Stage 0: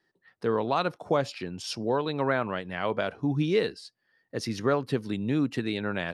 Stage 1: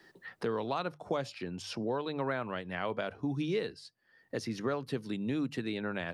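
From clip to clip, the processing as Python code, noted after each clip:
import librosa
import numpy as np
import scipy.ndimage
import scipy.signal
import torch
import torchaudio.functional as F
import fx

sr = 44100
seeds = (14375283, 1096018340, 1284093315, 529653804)

y = fx.hum_notches(x, sr, base_hz=50, count=3)
y = fx.band_squash(y, sr, depth_pct=70)
y = y * 10.0 ** (-7.0 / 20.0)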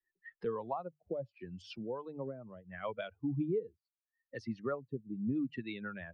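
y = fx.bin_expand(x, sr, power=2.0)
y = fx.rotary_switch(y, sr, hz=1.2, then_hz=6.0, switch_at_s=1.9)
y = fx.filter_lfo_lowpass(y, sr, shape='sine', hz=0.74, low_hz=400.0, high_hz=3100.0, q=1.0)
y = y * 10.0 ** (2.5 / 20.0)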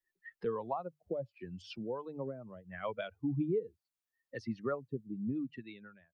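y = fx.fade_out_tail(x, sr, length_s=1.14)
y = y * 10.0 ** (1.0 / 20.0)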